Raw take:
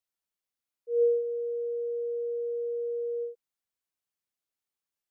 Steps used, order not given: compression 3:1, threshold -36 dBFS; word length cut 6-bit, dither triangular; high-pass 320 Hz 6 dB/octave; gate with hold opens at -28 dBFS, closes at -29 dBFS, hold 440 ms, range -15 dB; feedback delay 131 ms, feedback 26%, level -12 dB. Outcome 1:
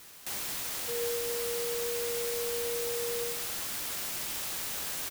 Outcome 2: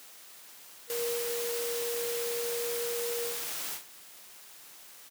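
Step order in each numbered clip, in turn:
compression > high-pass > word length cut > feedback delay > gate with hold; compression > feedback delay > word length cut > gate with hold > high-pass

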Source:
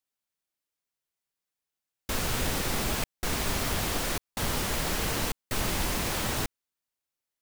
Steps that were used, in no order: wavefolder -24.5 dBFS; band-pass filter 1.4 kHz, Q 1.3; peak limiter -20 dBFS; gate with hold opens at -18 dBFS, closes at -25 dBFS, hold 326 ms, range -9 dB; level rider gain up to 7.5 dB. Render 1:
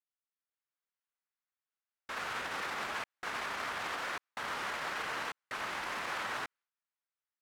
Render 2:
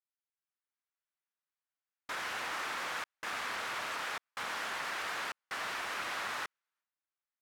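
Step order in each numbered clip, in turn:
gate with hold > level rider > peak limiter > band-pass filter > wavefolder; peak limiter > level rider > gate with hold > wavefolder > band-pass filter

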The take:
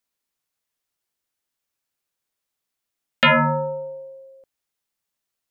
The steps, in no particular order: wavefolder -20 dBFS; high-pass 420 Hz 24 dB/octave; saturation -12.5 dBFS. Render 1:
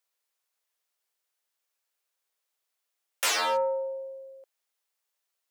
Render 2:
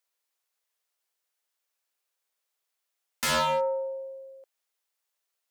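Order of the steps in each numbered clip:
wavefolder > high-pass > saturation; high-pass > saturation > wavefolder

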